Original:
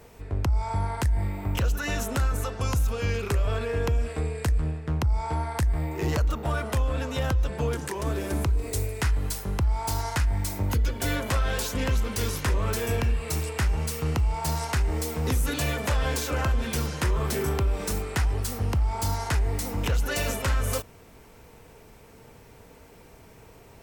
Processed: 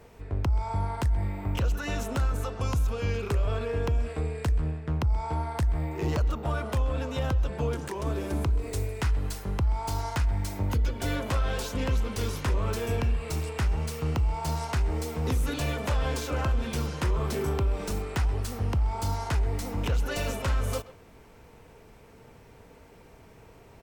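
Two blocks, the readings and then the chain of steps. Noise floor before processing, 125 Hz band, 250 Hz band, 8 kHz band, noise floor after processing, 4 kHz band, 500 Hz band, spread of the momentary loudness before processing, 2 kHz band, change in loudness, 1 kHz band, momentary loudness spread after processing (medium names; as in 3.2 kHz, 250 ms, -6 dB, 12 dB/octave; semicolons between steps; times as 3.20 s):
-51 dBFS, -1.5 dB, -1.5 dB, -7.0 dB, -53 dBFS, -4.0 dB, -1.5 dB, 3 LU, -4.5 dB, -2.0 dB, -2.0 dB, 3 LU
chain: tracing distortion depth 0.022 ms; treble shelf 5.6 kHz -7.5 dB; speakerphone echo 130 ms, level -16 dB; dynamic bell 1.8 kHz, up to -4 dB, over -46 dBFS, Q 2.3; trim -1.5 dB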